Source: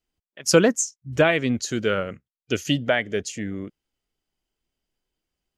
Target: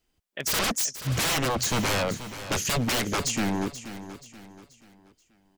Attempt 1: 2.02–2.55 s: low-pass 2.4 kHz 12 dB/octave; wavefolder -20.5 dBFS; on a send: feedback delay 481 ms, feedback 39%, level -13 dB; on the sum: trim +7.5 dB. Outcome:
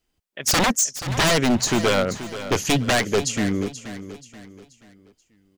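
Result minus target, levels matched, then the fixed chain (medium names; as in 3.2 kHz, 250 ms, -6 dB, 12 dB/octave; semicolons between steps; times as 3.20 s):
wavefolder: distortion -9 dB
2.02–2.55 s: low-pass 2.4 kHz 12 dB/octave; wavefolder -28 dBFS; on a send: feedback delay 481 ms, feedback 39%, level -13 dB; on the sum: trim +7.5 dB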